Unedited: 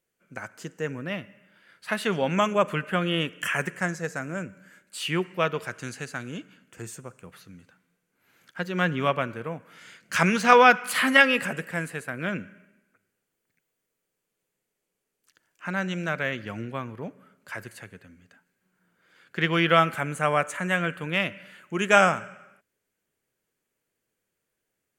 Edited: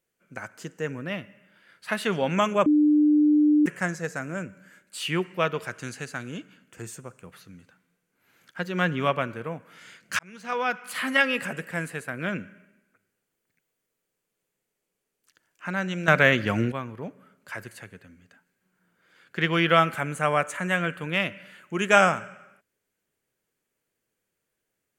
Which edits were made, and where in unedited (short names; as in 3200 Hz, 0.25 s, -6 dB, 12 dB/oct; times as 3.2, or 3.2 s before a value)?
2.66–3.66 bleep 299 Hz -15.5 dBFS
10.19–11.86 fade in
16.08–16.72 gain +10 dB